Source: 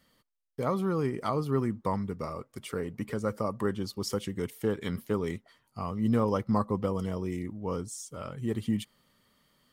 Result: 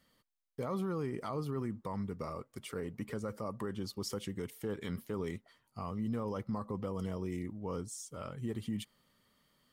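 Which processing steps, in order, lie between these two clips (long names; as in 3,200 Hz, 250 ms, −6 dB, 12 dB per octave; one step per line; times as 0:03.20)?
brickwall limiter −24 dBFS, peak gain reduction 10 dB
level −4 dB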